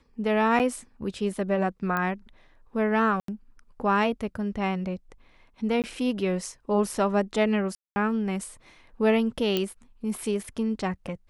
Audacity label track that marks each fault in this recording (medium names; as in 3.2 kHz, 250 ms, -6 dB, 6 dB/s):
0.590000	0.600000	dropout 8.2 ms
1.970000	1.970000	pop -15 dBFS
3.200000	3.280000	dropout 83 ms
5.820000	5.840000	dropout 18 ms
7.750000	7.960000	dropout 210 ms
9.570000	9.570000	pop -12 dBFS